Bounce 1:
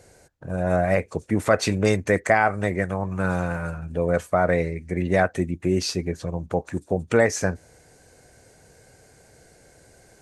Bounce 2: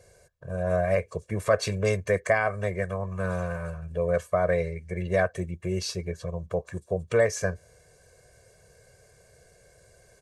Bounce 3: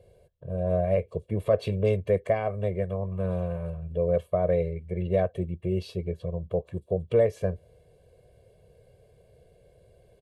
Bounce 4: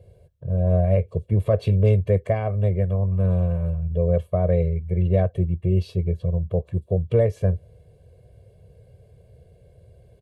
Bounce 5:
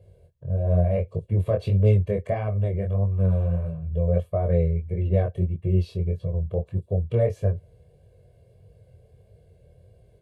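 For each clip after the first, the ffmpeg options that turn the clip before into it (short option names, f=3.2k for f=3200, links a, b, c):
-af "aecho=1:1:1.8:0.86,volume=-7dB"
-af "firequalizer=gain_entry='entry(480,0);entry(1500,-18);entry(3100,-2);entry(5900,-25);entry(11000,-11)':delay=0.05:min_phase=1,volume=1.5dB"
-af "equalizer=f=90:t=o:w=2.2:g=11.5"
-af "flanger=delay=19:depth=5.9:speed=1.6"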